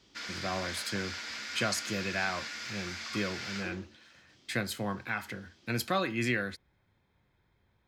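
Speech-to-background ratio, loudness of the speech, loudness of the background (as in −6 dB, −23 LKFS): 3.5 dB, −35.0 LKFS, −38.5 LKFS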